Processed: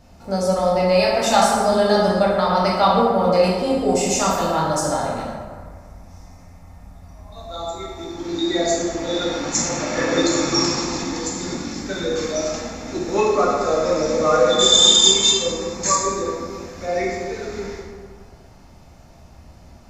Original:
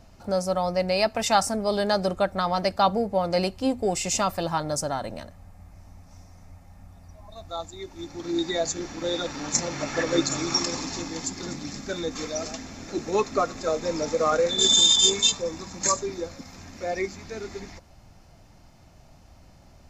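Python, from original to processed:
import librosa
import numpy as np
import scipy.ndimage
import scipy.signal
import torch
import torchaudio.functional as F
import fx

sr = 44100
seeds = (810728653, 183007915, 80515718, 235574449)

y = fx.rev_plate(x, sr, seeds[0], rt60_s=1.8, hf_ratio=0.5, predelay_ms=0, drr_db=-5.5)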